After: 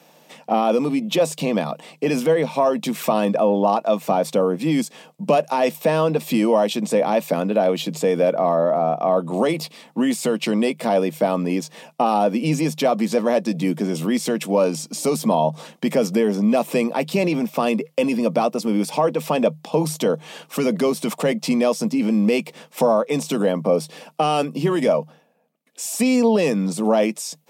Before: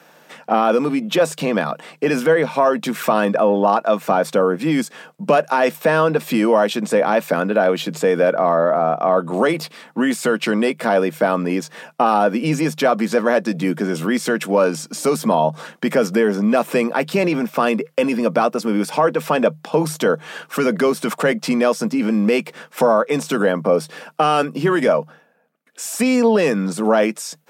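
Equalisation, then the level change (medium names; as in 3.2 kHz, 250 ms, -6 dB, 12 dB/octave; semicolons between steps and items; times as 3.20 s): peaking EQ 400 Hz -3 dB 0.78 oct; peaking EQ 1.5 kHz -14 dB 0.67 oct; 0.0 dB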